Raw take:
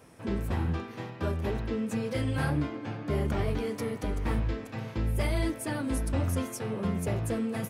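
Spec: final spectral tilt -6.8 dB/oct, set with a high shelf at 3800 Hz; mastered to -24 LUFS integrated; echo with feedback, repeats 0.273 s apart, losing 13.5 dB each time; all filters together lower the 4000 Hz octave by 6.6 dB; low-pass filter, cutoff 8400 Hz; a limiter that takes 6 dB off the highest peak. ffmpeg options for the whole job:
-af "lowpass=8.4k,highshelf=f=3.8k:g=-7,equalizer=f=4k:t=o:g=-4.5,alimiter=limit=-23dB:level=0:latency=1,aecho=1:1:273|546:0.211|0.0444,volume=9dB"

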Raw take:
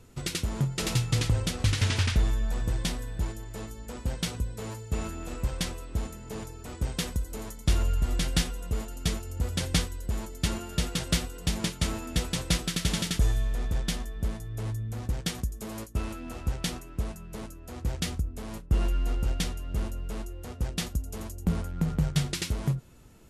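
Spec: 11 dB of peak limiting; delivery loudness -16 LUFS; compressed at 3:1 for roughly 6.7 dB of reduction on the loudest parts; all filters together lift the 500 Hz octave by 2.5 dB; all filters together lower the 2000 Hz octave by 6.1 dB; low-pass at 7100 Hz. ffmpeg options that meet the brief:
-af "lowpass=7.1k,equalizer=f=500:t=o:g=3.5,equalizer=f=2k:t=o:g=-8,acompressor=threshold=-28dB:ratio=3,volume=22dB,alimiter=limit=-5.5dB:level=0:latency=1"

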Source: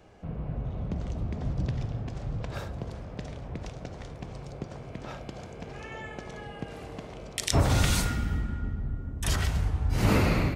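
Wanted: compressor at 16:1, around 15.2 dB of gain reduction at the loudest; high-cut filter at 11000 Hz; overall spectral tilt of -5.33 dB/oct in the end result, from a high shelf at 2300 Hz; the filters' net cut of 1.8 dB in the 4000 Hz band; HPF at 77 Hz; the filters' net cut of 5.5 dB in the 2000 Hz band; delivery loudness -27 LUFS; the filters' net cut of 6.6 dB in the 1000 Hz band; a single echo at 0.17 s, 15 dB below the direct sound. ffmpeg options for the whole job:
-af "highpass=77,lowpass=11k,equalizer=f=1k:t=o:g=-8.5,equalizer=f=2k:t=o:g=-6,highshelf=f=2.3k:g=6,equalizer=f=4k:t=o:g=-6,acompressor=threshold=-35dB:ratio=16,aecho=1:1:170:0.178,volume=14.5dB"

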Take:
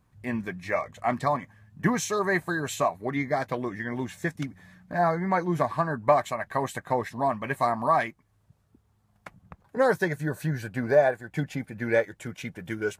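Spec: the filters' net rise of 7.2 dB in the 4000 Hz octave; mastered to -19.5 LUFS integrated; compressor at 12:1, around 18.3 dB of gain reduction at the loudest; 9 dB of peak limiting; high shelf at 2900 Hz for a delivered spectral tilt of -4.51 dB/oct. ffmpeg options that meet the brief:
-af "highshelf=f=2.9k:g=3,equalizer=f=4k:t=o:g=6.5,acompressor=threshold=-33dB:ratio=12,volume=21dB,alimiter=limit=-9dB:level=0:latency=1"

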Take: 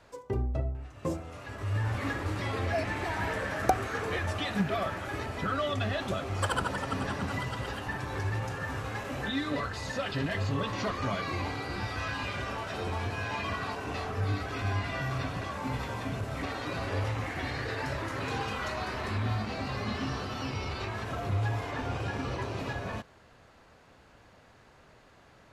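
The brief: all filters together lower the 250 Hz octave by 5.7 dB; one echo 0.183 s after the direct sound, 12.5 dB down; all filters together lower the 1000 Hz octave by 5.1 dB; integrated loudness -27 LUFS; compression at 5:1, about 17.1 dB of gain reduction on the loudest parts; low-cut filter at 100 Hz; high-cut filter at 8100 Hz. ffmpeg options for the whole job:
-af "highpass=100,lowpass=8.1k,equalizer=f=250:t=o:g=-7,equalizer=f=1k:t=o:g=-6.5,acompressor=threshold=-44dB:ratio=5,aecho=1:1:183:0.237,volume=19dB"

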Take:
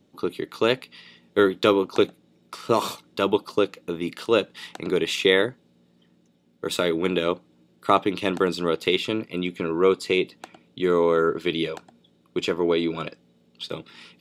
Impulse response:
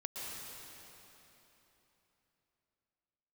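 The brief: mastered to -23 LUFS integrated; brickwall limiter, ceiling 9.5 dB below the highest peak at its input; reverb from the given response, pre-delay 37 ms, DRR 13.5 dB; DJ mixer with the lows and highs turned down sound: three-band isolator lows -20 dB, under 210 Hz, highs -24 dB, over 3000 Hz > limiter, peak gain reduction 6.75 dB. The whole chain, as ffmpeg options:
-filter_complex "[0:a]alimiter=limit=-13dB:level=0:latency=1,asplit=2[a][b];[1:a]atrim=start_sample=2205,adelay=37[c];[b][c]afir=irnorm=-1:irlink=0,volume=-14.5dB[d];[a][d]amix=inputs=2:normalize=0,acrossover=split=210 3000:gain=0.1 1 0.0631[e][f][g];[e][f][g]amix=inputs=3:normalize=0,volume=7.5dB,alimiter=limit=-10.5dB:level=0:latency=1"

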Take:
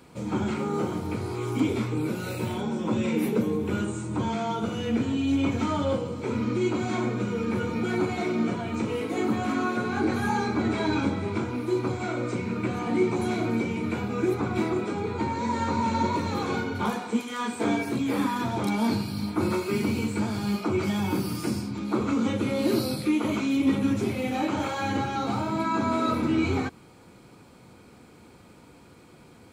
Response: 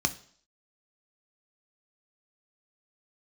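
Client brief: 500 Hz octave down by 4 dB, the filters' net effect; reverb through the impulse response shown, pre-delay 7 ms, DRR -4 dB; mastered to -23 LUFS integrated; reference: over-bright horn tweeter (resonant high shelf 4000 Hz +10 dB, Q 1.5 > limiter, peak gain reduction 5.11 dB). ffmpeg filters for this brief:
-filter_complex "[0:a]equalizer=f=500:t=o:g=-5.5,asplit=2[a][b];[1:a]atrim=start_sample=2205,adelay=7[c];[b][c]afir=irnorm=-1:irlink=0,volume=-3.5dB[d];[a][d]amix=inputs=2:normalize=0,highshelf=f=4k:t=q:w=1.5:g=10,volume=-2.5dB,alimiter=limit=-12.5dB:level=0:latency=1"

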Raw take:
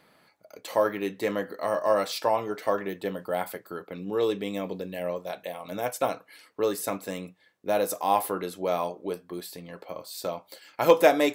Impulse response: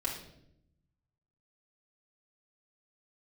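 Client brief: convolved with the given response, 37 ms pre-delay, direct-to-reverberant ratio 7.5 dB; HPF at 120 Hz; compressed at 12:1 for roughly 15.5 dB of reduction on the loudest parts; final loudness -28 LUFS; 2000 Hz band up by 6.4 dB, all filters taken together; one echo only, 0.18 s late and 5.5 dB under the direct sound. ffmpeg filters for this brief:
-filter_complex "[0:a]highpass=120,equalizer=f=2k:t=o:g=8,acompressor=threshold=-27dB:ratio=12,aecho=1:1:180:0.531,asplit=2[a][b];[1:a]atrim=start_sample=2205,adelay=37[c];[b][c]afir=irnorm=-1:irlink=0,volume=-11.5dB[d];[a][d]amix=inputs=2:normalize=0,volume=4.5dB"

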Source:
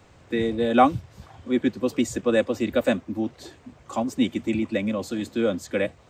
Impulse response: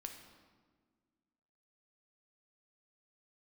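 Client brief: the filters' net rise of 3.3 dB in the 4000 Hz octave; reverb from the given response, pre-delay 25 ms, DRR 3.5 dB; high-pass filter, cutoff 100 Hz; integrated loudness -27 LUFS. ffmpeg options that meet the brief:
-filter_complex "[0:a]highpass=100,equalizer=f=4k:t=o:g=4,asplit=2[a][b];[1:a]atrim=start_sample=2205,adelay=25[c];[b][c]afir=irnorm=-1:irlink=0,volume=0dB[d];[a][d]amix=inputs=2:normalize=0,volume=-3.5dB"

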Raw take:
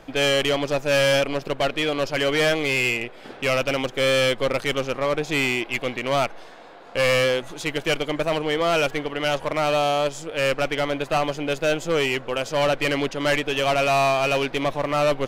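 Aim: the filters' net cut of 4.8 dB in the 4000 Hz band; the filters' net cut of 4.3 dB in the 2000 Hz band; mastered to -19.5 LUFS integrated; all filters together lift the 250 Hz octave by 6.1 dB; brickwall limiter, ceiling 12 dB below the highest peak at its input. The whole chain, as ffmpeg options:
-af "equalizer=f=250:t=o:g=7.5,equalizer=f=2k:t=o:g=-4,equalizer=f=4k:t=o:g=-5,volume=12dB,alimiter=limit=-11dB:level=0:latency=1"

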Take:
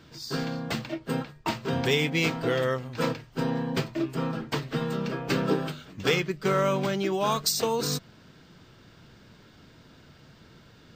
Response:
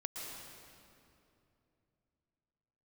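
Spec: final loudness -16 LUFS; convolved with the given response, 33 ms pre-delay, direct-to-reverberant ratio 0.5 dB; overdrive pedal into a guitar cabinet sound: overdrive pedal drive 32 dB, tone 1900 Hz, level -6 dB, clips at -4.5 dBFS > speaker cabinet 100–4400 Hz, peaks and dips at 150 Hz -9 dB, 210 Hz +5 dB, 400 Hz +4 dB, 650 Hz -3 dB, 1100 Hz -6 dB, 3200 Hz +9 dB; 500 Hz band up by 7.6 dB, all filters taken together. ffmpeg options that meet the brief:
-filter_complex "[0:a]equalizer=f=500:t=o:g=7.5,asplit=2[a][b];[1:a]atrim=start_sample=2205,adelay=33[c];[b][c]afir=irnorm=-1:irlink=0,volume=-0.5dB[d];[a][d]amix=inputs=2:normalize=0,asplit=2[e][f];[f]highpass=f=720:p=1,volume=32dB,asoftclip=type=tanh:threshold=-4.5dB[g];[e][g]amix=inputs=2:normalize=0,lowpass=f=1.9k:p=1,volume=-6dB,highpass=100,equalizer=f=150:t=q:w=4:g=-9,equalizer=f=210:t=q:w=4:g=5,equalizer=f=400:t=q:w=4:g=4,equalizer=f=650:t=q:w=4:g=-3,equalizer=f=1.1k:t=q:w=4:g=-6,equalizer=f=3.2k:t=q:w=4:g=9,lowpass=f=4.4k:w=0.5412,lowpass=f=4.4k:w=1.3066,volume=-3.5dB"

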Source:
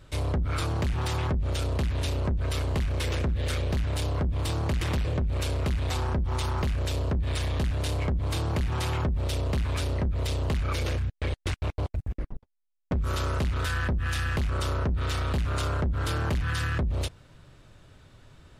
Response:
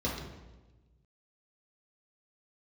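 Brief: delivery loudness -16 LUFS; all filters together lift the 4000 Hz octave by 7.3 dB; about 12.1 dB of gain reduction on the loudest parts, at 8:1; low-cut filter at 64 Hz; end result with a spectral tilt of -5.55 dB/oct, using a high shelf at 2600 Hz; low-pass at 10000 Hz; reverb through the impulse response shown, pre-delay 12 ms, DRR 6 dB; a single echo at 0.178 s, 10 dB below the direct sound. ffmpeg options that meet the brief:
-filter_complex "[0:a]highpass=64,lowpass=10k,highshelf=f=2.6k:g=5,equalizer=f=4k:t=o:g=5,acompressor=threshold=-36dB:ratio=8,aecho=1:1:178:0.316,asplit=2[a][b];[1:a]atrim=start_sample=2205,adelay=12[c];[b][c]afir=irnorm=-1:irlink=0,volume=-13dB[d];[a][d]amix=inputs=2:normalize=0,volume=16.5dB"

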